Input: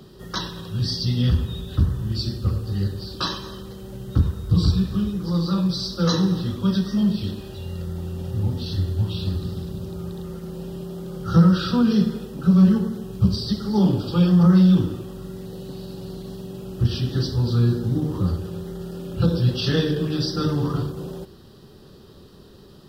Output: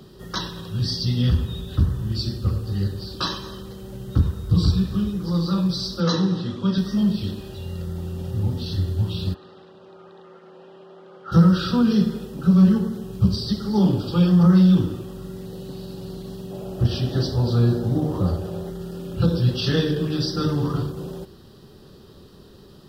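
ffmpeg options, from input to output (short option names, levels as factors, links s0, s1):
-filter_complex "[0:a]asettb=1/sr,asplit=3[s0][s1][s2];[s0]atrim=end=6.004[s3];[s1]atrim=start=6:end=6.78,asetpts=PTS-STARTPTS,afade=t=in:d=0.004:c=qsin,afade=t=out:st=0.776:d=0.004:c=qsin,highpass=130,lowpass=5800[s4];[s2]atrim=start=6.776[s5];[s3][s4]acrossfade=d=0.004:c1=hsin:c2=qsin[s6];[s6][s5]acrossfade=d=0.004:c1=qsin:c2=hsin,asplit=3[s7][s8][s9];[s7]afade=t=out:st=9.33:d=0.02[s10];[s8]highpass=620,lowpass=2200,afade=t=in:st=9.33:d=0.02,afade=t=out:st=11.31:d=0.02[s11];[s9]afade=t=in:st=11.31:d=0.02[s12];[s10][s11][s12]amix=inputs=3:normalize=0,asettb=1/sr,asplit=3[s13][s14][s15];[s13]atrim=end=16.514[s16];[s14]atrim=start=16.51:end=18.7,asetpts=PTS-STARTPTS,afade=t=in:d=0.004:c=qsin,afade=t=out:st=2.186:d=0.004:c=qsin,equalizer=f=650:w=1.8:g=11.5[s17];[s15]atrim=start=18.696[s18];[s16][s17]acrossfade=d=0.004:c1=hsin:c2=qsin[s19];[s19][s18]acrossfade=d=0.004:c1=qsin:c2=hsin"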